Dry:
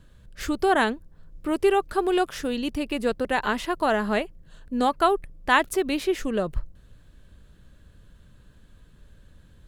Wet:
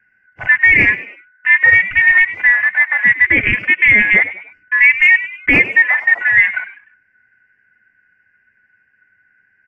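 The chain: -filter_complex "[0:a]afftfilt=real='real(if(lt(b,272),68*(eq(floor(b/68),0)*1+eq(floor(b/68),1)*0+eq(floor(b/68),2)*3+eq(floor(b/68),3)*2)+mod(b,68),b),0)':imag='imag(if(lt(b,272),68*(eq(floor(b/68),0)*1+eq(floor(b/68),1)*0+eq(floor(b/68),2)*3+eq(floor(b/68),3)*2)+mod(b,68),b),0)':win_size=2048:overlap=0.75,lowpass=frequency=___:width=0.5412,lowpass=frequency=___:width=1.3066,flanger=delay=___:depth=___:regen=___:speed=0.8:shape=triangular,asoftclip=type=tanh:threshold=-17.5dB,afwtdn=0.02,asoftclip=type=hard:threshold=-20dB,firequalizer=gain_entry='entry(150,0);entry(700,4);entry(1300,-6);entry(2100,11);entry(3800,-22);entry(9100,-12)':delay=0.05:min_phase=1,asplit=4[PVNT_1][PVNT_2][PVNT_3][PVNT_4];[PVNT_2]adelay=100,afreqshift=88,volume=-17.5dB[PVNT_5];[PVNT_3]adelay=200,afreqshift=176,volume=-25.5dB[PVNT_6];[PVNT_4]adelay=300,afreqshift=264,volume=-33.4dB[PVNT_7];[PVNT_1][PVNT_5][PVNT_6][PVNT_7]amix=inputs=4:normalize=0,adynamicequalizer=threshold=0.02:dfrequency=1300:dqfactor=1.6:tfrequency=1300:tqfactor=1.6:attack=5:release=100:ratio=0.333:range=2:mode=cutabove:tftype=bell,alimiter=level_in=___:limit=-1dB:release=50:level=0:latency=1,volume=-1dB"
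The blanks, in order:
6400, 6400, 8.6, 1.9, -31, 15dB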